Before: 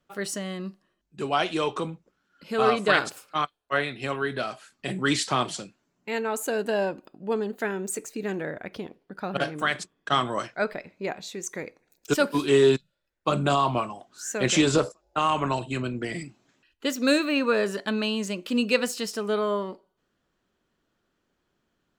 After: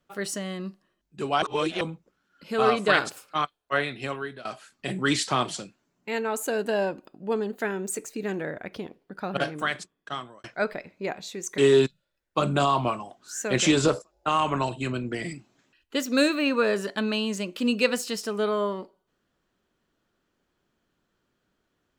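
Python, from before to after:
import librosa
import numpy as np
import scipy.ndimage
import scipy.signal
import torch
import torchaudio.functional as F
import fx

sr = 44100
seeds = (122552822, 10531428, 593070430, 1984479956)

y = fx.edit(x, sr, fx.reverse_span(start_s=1.42, length_s=0.39),
    fx.fade_out_to(start_s=3.98, length_s=0.47, floor_db=-18.5),
    fx.fade_out_span(start_s=9.47, length_s=0.97),
    fx.cut(start_s=11.58, length_s=0.9), tone=tone)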